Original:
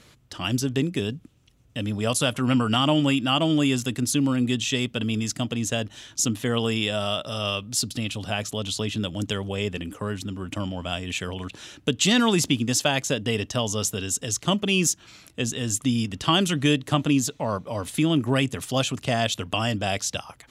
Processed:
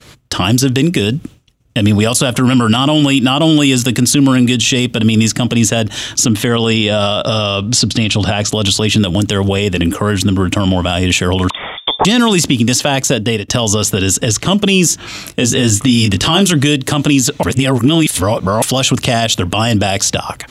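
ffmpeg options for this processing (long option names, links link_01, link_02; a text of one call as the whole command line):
ffmpeg -i in.wav -filter_complex "[0:a]asettb=1/sr,asplit=3[link_01][link_02][link_03];[link_01]atrim=end=6.464[link_04];[link_02]atrim=start=6.46:end=8.52,asetpts=PTS-STARTPTS,afade=type=in:duration=0.004:curve=qsin,afade=type=out:start_time=2.056:duration=0.004:curve=qsin,lowpass=6700[link_05];[link_03]atrim=start=8.516[link_06];[link_04][link_05]acrossfade=duration=0.004:curve1=hsin:curve2=qsin[link_07];[link_07][link_06]acrossfade=duration=0.004:curve1=qsin:curve2=hsin,asettb=1/sr,asplit=3[link_08][link_09][link_10];[link_08]atrim=end=11.504[link_11];[link_09]atrim=start=11.5:end=12.05,asetpts=PTS-STARTPTS,afade=type=in:duration=0.004:curve=qsin,afade=type=out:start_time=0.546:duration=0.004:curve=qsin,lowpass=frequency=3100:width_type=q:width=0.5098,lowpass=frequency=3100:width_type=q:width=0.6013,lowpass=frequency=3100:width_type=q:width=0.9,lowpass=frequency=3100:width_type=q:width=2.563,afreqshift=-3700[link_12];[link_10]atrim=start=12.046[link_13];[link_11][link_12]acrossfade=duration=0.004:curve1=hsin:curve2=qsin[link_14];[link_14][link_13]acrossfade=duration=0.004:curve1=qsin:curve2=hsin,asettb=1/sr,asplit=3[link_15][link_16][link_17];[link_15]atrim=end=14.884[link_18];[link_16]atrim=start=14.88:end=16.52,asetpts=PTS-STARTPTS,afade=type=in:duration=0.004:curve=qsin,afade=type=out:start_time=1.636:duration=0.004:curve=qsin,asplit=2[link_19][link_20];[link_20]adelay=20,volume=-6dB[link_21];[link_19][link_21]amix=inputs=2:normalize=0,atrim=end_sample=72324[link_22];[link_17]atrim=start=16.516[link_23];[link_18][link_22]acrossfade=duration=0.004:curve1=hsin:curve2=qsin[link_24];[link_24][link_23]acrossfade=duration=0.004:curve1=qsin:curve2=hsin,asplit=4[link_25][link_26][link_27][link_28];[link_25]atrim=end=13.48,asetpts=PTS-STARTPTS,afade=type=out:start_time=12.89:duration=0.59:silence=0.0794328[link_29];[link_26]atrim=start=13.48:end=17.432,asetpts=PTS-STARTPTS,afade=type=in:duration=0.004:curve=hsin:silence=0.0794328[link_30];[link_27]atrim=start=17.428:end=18.622,asetpts=PTS-STARTPTS,areverse[link_31];[link_28]atrim=start=18.618[link_32];[link_29][link_30]concat=n=2:v=0:a=1[link_33];[link_33][link_31]acrossfade=duration=0.004:curve1=hsin:curve2=hsin[link_34];[link_34][link_32]acrossfade=duration=0.004:curve1=hsin:curve2=hsin,agate=range=-33dB:threshold=-47dB:ratio=3:detection=peak,acrossover=split=1300|3500[link_35][link_36][link_37];[link_35]acompressor=threshold=-27dB:ratio=4[link_38];[link_36]acompressor=threshold=-38dB:ratio=4[link_39];[link_37]acompressor=threshold=-34dB:ratio=4[link_40];[link_38][link_39][link_40]amix=inputs=3:normalize=0,alimiter=level_in=22dB:limit=-1dB:release=50:level=0:latency=1,volume=-1dB" out.wav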